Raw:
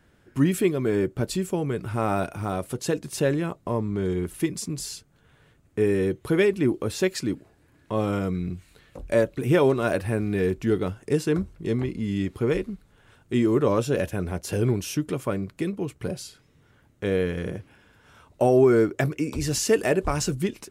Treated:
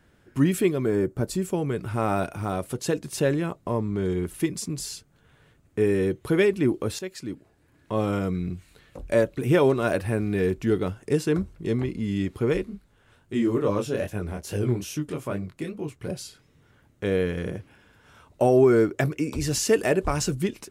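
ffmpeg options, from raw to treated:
ffmpeg -i in.wav -filter_complex "[0:a]asettb=1/sr,asplit=3[link_01][link_02][link_03];[link_01]atrim=end=0.864[link_04];[link_02]atrim=start=0.86:end=1.42,asetpts=PTS-STARTPTS,afade=type=in:duration=0.004:curve=qsin,afade=type=out:start_time=0.556:duration=0.004:curve=qsin,equalizer=frequency=3000:width=1.1:gain=-8[link_05];[link_03]atrim=start=1.416[link_06];[link_04][link_05]acrossfade=duration=0.004:curve1=hsin:curve2=qsin[link_07];[link_07][link_06]acrossfade=duration=0.004:curve1=qsin:curve2=hsin,asplit=3[link_08][link_09][link_10];[link_08]afade=type=out:start_time=12.64:duration=0.02[link_11];[link_09]flanger=delay=19:depth=7.2:speed=2.4,afade=type=in:start_time=12.64:duration=0.02,afade=type=out:start_time=16.07:duration=0.02[link_12];[link_10]afade=type=in:start_time=16.07:duration=0.02[link_13];[link_11][link_12][link_13]amix=inputs=3:normalize=0,asplit=2[link_14][link_15];[link_14]atrim=end=6.99,asetpts=PTS-STARTPTS,afade=type=out:start_time=6.986:duration=0.004:curve=hsin:silence=0.223872[link_16];[link_15]atrim=start=6.99,asetpts=PTS-STARTPTS,afade=type=in:duration=0.97:silence=0.223872[link_17];[link_16][link_17]concat=n=2:v=0:a=1" out.wav

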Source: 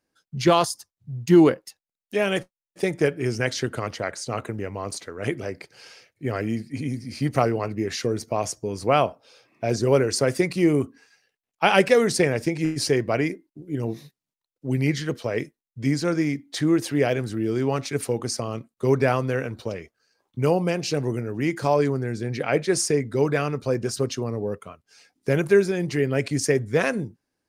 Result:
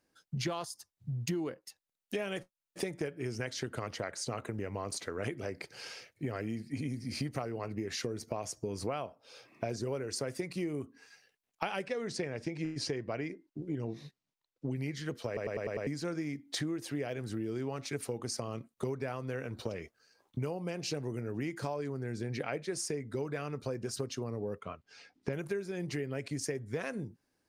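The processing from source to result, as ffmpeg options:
ffmpeg -i in.wav -filter_complex "[0:a]asettb=1/sr,asplit=3[link_01][link_02][link_03];[link_01]atrim=end=11.864[link_04];[link_02]atrim=start=11.86:end=14.76,asetpts=PTS-STARTPTS,afade=type=in:duration=0.004:curve=qsin,afade=type=out:start_time=2.896:duration=0.004:curve=qsin,lowpass=6000[link_05];[link_03]atrim=start=14.756[link_06];[link_04][link_05]acrossfade=duration=0.004:curve1=hsin:curve2=qsin[link_07];[link_07][link_06]acrossfade=duration=0.004:curve1=qsin:curve2=hsin,asettb=1/sr,asplit=3[link_08][link_09][link_10];[link_08]atrim=end=24.604[link_11];[link_09]atrim=start=24.6:end=25.33,asetpts=PTS-STARTPTS,afade=type=in:duration=0.004:curve=qsin,afade=type=out:start_time=0.726:duration=0.004:curve=qsin,lowpass=4300[link_12];[link_10]atrim=start=25.326[link_13];[link_11][link_12]acrossfade=duration=0.004:curve1=hsin:curve2=qsin[link_14];[link_14][link_13]acrossfade=duration=0.004:curve1=qsin:curve2=hsin,asplit=7[link_15][link_16][link_17][link_18][link_19][link_20][link_21];[link_15]atrim=end=15.372[link_22];[link_16]atrim=start=15.268:end=15.372[link_23];[link_17]atrim=start=15.268:end=15.372[link_24];[link_18]atrim=start=15.268:end=15.372[link_25];[link_19]atrim=start=15.268:end=15.372[link_26];[link_20]atrim=start=15.268:end=15.372[link_27];[link_21]atrim=start=15.868[link_28];[link_22][link_23]acrossfade=duration=0.004:curve1=hsin:curve2=hsin[link_29];[link_29][link_24]acrossfade=duration=0.004:curve1=hsin:curve2=hsin[link_30];[link_30][link_25]acrossfade=duration=0.004:curve1=hsin:curve2=hsin[link_31];[link_31][link_26]acrossfade=duration=0.004:curve1=hsin:curve2=hsin[link_32];[link_32][link_27]acrossfade=duration=0.004:curve1=hsin:curve2=hsin[link_33];[link_33][link_28]acrossfade=duration=0.004:curve1=hsin:curve2=hsin,acompressor=threshold=-34dB:ratio=10,volume=1dB" out.wav

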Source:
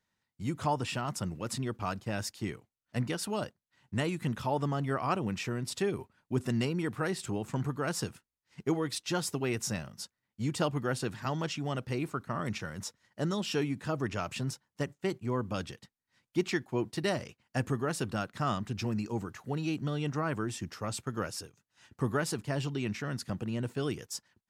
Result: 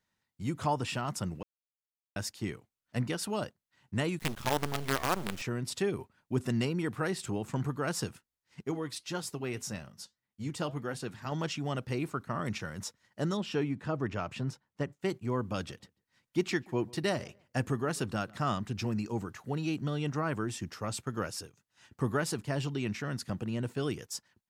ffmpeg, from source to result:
ffmpeg -i in.wav -filter_complex "[0:a]asettb=1/sr,asplit=3[link_01][link_02][link_03];[link_01]atrim=end=4.194[link_04];[link_02]atrim=start=4.19:end=5.42,asetpts=PTS-STARTPTS,afade=type=in:duration=0.004:curve=qsin,afade=type=out:start_time=1.226:duration=0.004:curve=qsin,acrusher=bits=5:dc=4:mix=0:aa=0.000001[link_05];[link_03]atrim=start=5.416[link_06];[link_04][link_05]acrossfade=duration=0.004:curve1=hsin:curve2=qsin[link_07];[link_07][link_06]acrossfade=duration=0.004:curve1=qsin:curve2=hsin,asettb=1/sr,asplit=3[link_08][link_09][link_10];[link_08]atrim=end=8.614[link_11];[link_09]atrim=start=8.61:end=11.32,asetpts=PTS-STARTPTS,afade=type=in:duration=0.004:curve=qsin,afade=type=out:start_time=2.706:duration=0.004:curve=qsin,flanger=delay=3.1:depth=4.5:regen=-80:speed=1.7:shape=triangular[link_12];[link_10]atrim=start=11.316[link_13];[link_11][link_12]acrossfade=duration=0.004:curve1=hsin:curve2=qsin[link_14];[link_14][link_13]acrossfade=duration=0.004:curve1=qsin:curve2=hsin,asettb=1/sr,asplit=3[link_15][link_16][link_17];[link_15]atrim=end=13.374[link_18];[link_16]atrim=start=13.37:end=14.93,asetpts=PTS-STARTPTS,afade=type=in:duration=0.004:curve=qsin,afade=type=out:start_time=1.556:duration=0.004:curve=qsin,lowpass=frequency=2300:poles=1[link_19];[link_17]atrim=start=14.926[link_20];[link_18][link_19]acrossfade=duration=0.004:curve1=hsin:curve2=qsin[link_21];[link_21][link_20]acrossfade=duration=0.004:curve1=qsin:curve2=hsin,asplit=3[link_22][link_23][link_24];[link_22]afade=type=out:start_time=15.67:duration=0.02[link_25];[link_23]asplit=2[link_26][link_27];[link_27]adelay=141,lowpass=frequency=1700:poles=1,volume=-23.5dB,asplit=2[link_28][link_29];[link_29]adelay=141,lowpass=frequency=1700:poles=1,volume=0.2[link_30];[link_26][link_28][link_30]amix=inputs=3:normalize=0,afade=type=in:start_time=15.67:duration=0.02,afade=type=out:start_time=18.5:duration=0.02[link_31];[link_24]afade=type=in:start_time=18.5:duration=0.02[link_32];[link_25][link_31][link_32]amix=inputs=3:normalize=0,asplit=3[link_33][link_34][link_35];[link_33]atrim=end=1.43,asetpts=PTS-STARTPTS,afade=type=out:start_time=1.426:duration=0.004:curve=hsin[link_36];[link_34]atrim=start=1.43:end=2.16,asetpts=PTS-STARTPTS,volume=0[link_37];[link_35]atrim=start=2.16,asetpts=PTS-STARTPTS,afade=type=in:duration=0.004:curve=hsin[link_38];[link_36][link_37][link_38]concat=n=3:v=0:a=1" out.wav

